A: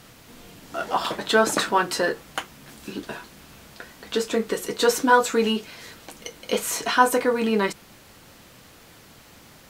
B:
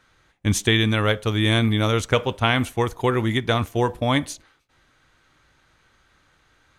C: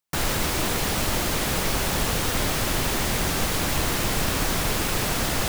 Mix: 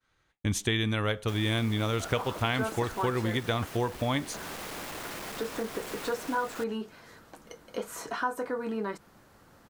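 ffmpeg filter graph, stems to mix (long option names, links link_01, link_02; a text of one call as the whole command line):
ffmpeg -i stem1.wav -i stem2.wav -i stem3.wav -filter_complex "[0:a]highshelf=frequency=1900:width_type=q:width=1.5:gain=-7,adelay=1250,volume=-7dB[link_01];[1:a]agate=range=-33dB:threshold=-51dB:ratio=3:detection=peak,volume=0.5dB[link_02];[2:a]asoftclip=type=tanh:threshold=-23dB,acrossover=split=210|2600[link_03][link_04][link_05];[link_03]acompressor=threshold=-39dB:ratio=4[link_06];[link_04]acompressor=threshold=-32dB:ratio=4[link_07];[link_05]acompressor=threshold=-38dB:ratio=4[link_08];[link_06][link_07][link_08]amix=inputs=3:normalize=0,lowshelf=frequency=140:gain=-10.5,adelay=1150,volume=-5dB[link_09];[link_01][link_02][link_09]amix=inputs=3:normalize=0,acompressor=threshold=-32dB:ratio=2" out.wav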